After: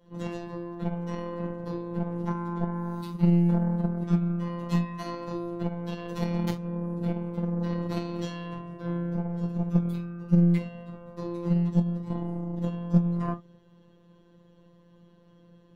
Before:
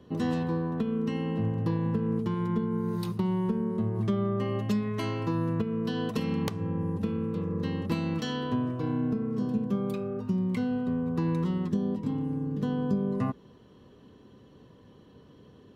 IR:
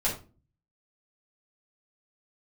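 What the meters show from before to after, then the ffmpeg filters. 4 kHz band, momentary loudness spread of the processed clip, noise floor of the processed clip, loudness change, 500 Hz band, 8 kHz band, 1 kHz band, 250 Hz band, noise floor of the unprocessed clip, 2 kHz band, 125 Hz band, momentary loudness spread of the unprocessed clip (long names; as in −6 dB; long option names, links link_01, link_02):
−4.5 dB, 12 LU, −58 dBFS, +0.5 dB, −2.5 dB, can't be measured, −0.5 dB, 0.0 dB, −55 dBFS, −2.5 dB, +3.0 dB, 3 LU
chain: -filter_complex "[1:a]atrim=start_sample=2205,afade=type=out:start_time=0.14:duration=0.01,atrim=end_sample=6615[link_01];[0:a][link_01]afir=irnorm=-1:irlink=0,aeval=exprs='0.562*(cos(1*acos(clip(val(0)/0.562,-1,1)))-cos(1*PI/2))+0.0708*(cos(2*acos(clip(val(0)/0.562,-1,1)))-cos(2*PI/2))+0.112*(cos(3*acos(clip(val(0)/0.562,-1,1)))-cos(3*PI/2))+0.00355*(cos(7*acos(clip(val(0)/0.562,-1,1)))-cos(7*PI/2))':channel_layout=same,afftfilt=real='hypot(re,im)*cos(PI*b)':imag='0':win_size=1024:overlap=0.75"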